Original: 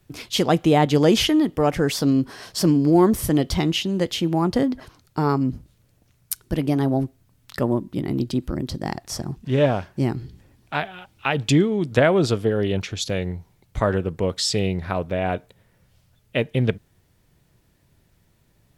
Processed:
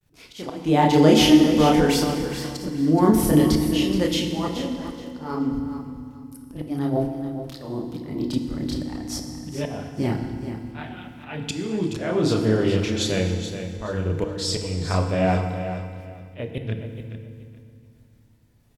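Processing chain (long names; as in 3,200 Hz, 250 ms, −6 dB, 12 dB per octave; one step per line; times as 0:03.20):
downward expander −55 dBFS
multi-voice chorus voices 6, 1.3 Hz, delay 30 ms, depth 3 ms
volume swells 405 ms
repeating echo 425 ms, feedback 22%, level −10.5 dB
feedback delay network reverb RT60 2.1 s, low-frequency decay 1.6×, high-frequency decay 0.85×, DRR 5 dB
level +3.5 dB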